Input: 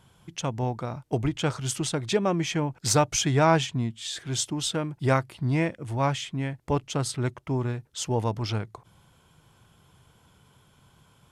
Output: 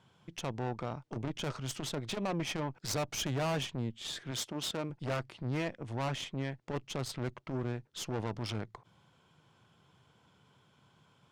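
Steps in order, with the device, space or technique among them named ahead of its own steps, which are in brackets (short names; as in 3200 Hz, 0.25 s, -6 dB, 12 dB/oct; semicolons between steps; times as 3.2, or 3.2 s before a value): valve radio (BPF 120–5600 Hz; tube stage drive 29 dB, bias 0.8; core saturation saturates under 180 Hz); 4.31–4.9 HPF 140 Hz 6 dB/oct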